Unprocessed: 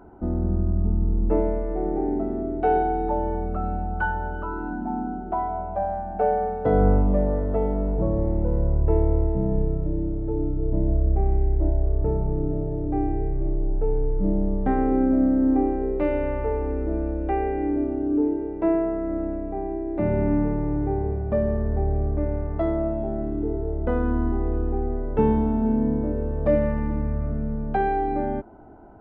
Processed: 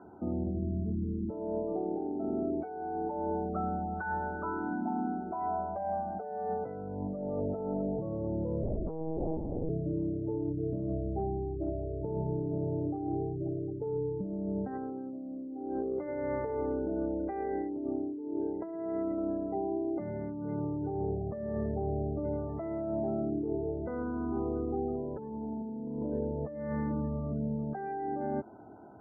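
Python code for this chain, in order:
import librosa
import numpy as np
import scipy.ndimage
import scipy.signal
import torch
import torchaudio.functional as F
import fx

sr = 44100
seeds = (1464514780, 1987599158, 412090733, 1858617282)

y = scipy.signal.sosfilt(scipy.signal.butter(16, 2300.0, 'lowpass', fs=sr, output='sos'), x)
y = fx.spec_gate(y, sr, threshold_db=-30, keep='strong')
y = scipy.signal.sosfilt(scipy.signal.butter(4, 95.0, 'highpass', fs=sr, output='sos'), y)
y = fx.over_compress(y, sr, threshold_db=-28.0, ratio=-1.0)
y = fx.lpc_monotone(y, sr, seeds[0], pitch_hz=160.0, order=8, at=(8.63, 9.7))
y = y * 10.0 ** (-6.0 / 20.0)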